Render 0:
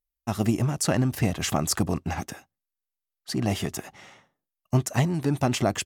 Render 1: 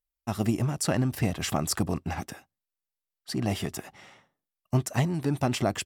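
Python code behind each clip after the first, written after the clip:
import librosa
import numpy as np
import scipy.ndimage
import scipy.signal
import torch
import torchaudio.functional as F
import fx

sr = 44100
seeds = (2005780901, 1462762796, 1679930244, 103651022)

y = fx.notch(x, sr, hz=6500.0, q=12.0)
y = F.gain(torch.from_numpy(y), -2.5).numpy()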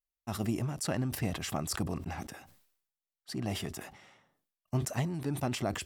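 y = fx.sustainer(x, sr, db_per_s=79.0)
y = F.gain(torch.from_numpy(y), -7.0).numpy()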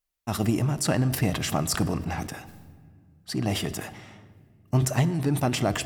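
y = fx.room_shoebox(x, sr, seeds[0], volume_m3=3300.0, walls='mixed', distance_m=0.48)
y = F.gain(torch.from_numpy(y), 8.0).numpy()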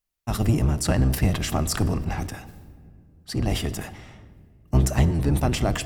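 y = fx.octave_divider(x, sr, octaves=1, level_db=2.0)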